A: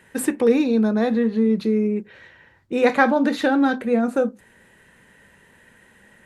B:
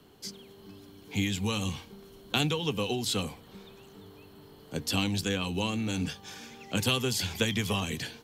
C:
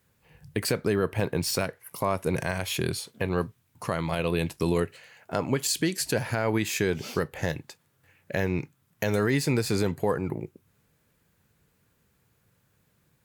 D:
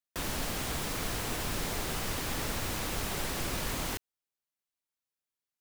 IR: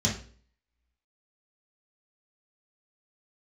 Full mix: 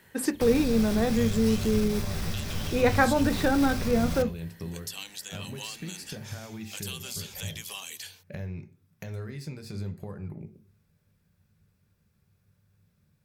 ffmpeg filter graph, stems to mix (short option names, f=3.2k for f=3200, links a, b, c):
-filter_complex "[0:a]volume=-5.5dB[a];[1:a]highpass=640,crystalizer=i=4:c=0,volume=-11.5dB[b];[2:a]acompressor=threshold=-33dB:ratio=6,volume=-7dB,asplit=2[c][d];[d]volume=-16dB[e];[3:a]aeval=exprs='(tanh(44.7*val(0)+0.25)-tanh(0.25))/44.7':c=same,adelay=250,volume=2.5dB,asplit=2[f][g];[g]volume=-16dB[h];[b][c][f]amix=inputs=3:normalize=0,lowshelf=f=130:g=10.5,alimiter=limit=-24dB:level=0:latency=1:release=181,volume=0dB[i];[4:a]atrim=start_sample=2205[j];[e][h]amix=inputs=2:normalize=0[k];[k][j]afir=irnorm=-1:irlink=0[l];[a][i][l]amix=inputs=3:normalize=0"